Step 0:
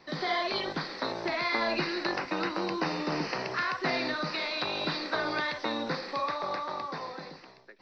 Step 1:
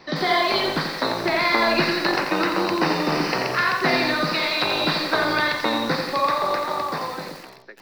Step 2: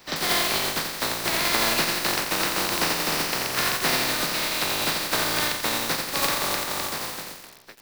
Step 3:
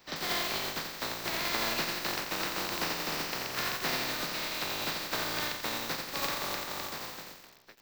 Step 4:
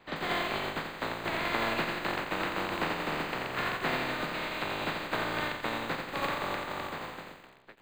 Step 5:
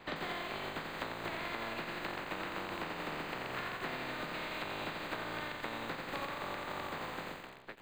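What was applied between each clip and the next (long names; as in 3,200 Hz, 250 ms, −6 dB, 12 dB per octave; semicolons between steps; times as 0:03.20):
feedback echo at a low word length 87 ms, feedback 55%, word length 8 bits, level −6 dB; level +9 dB
compressing power law on the bin magnitudes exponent 0.35; level −3 dB
parametric band 10,000 Hz −13 dB 0.35 octaves; level −8.5 dB
moving average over 8 samples; level +4 dB
downward compressor 12 to 1, threshold −41 dBFS, peak gain reduction 16 dB; level +4.5 dB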